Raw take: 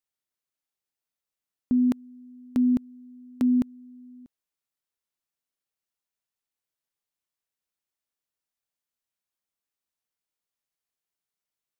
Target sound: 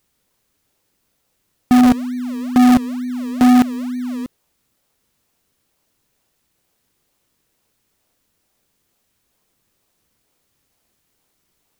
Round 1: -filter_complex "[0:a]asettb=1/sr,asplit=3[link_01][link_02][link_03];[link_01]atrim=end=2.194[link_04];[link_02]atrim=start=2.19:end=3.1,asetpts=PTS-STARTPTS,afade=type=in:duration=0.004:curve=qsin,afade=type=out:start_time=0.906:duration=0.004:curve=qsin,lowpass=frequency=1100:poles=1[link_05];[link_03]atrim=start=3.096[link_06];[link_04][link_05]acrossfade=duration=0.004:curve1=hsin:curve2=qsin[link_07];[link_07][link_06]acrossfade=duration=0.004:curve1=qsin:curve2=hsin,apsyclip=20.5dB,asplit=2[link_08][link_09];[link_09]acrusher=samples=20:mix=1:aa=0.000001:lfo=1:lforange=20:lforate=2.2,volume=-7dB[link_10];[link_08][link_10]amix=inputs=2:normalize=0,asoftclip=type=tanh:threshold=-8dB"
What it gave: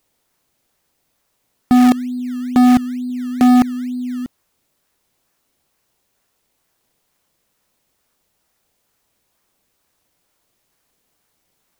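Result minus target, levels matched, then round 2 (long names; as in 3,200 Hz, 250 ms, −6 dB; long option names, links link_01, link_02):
sample-and-hold swept by an LFO: distortion −8 dB
-filter_complex "[0:a]asettb=1/sr,asplit=3[link_01][link_02][link_03];[link_01]atrim=end=2.194[link_04];[link_02]atrim=start=2.19:end=3.1,asetpts=PTS-STARTPTS,afade=type=in:duration=0.004:curve=qsin,afade=type=out:start_time=0.906:duration=0.004:curve=qsin,lowpass=frequency=1100:poles=1[link_05];[link_03]atrim=start=3.096[link_06];[link_04][link_05]acrossfade=duration=0.004:curve1=hsin:curve2=qsin[link_07];[link_07][link_06]acrossfade=duration=0.004:curve1=qsin:curve2=hsin,apsyclip=20.5dB,asplit=2[link_08][link_09];[link_09]acrusher=samples=42:mix=1:aa=0.000001:lfo=1:lforange=42:lforate=2.2,volume=-7dB[link_10];[link_08][link_10]amix=inputs=2:normalize=0,asoftclip=type=tanh:threshold=-8dB"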